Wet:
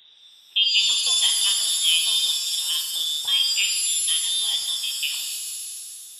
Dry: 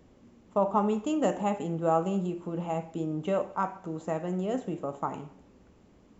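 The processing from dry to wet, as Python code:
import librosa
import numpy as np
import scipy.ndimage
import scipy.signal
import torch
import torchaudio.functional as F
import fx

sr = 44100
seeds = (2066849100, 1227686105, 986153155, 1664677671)

y = fx.freq_invert(x, sr, carrier_hz=3800)
y = scipy.signal.sosfilt(scipy.signal.butter(2, 52.0, 'highpass', fs=sr, output='sos'), y)
y = fx.rev_shimmer(y, sr, seeds[0], rt60_s=2.1, semitones=7, shimmer_db=-2, drr_db=5.5)
y = y * 10.0 ** (4.0 / 20.0)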